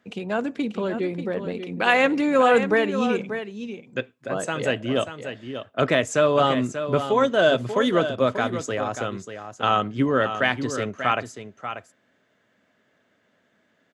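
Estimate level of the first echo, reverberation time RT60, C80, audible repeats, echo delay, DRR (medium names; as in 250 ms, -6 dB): -9.5 dB, no reverb, no reverb, 1, 588 ms, no reverb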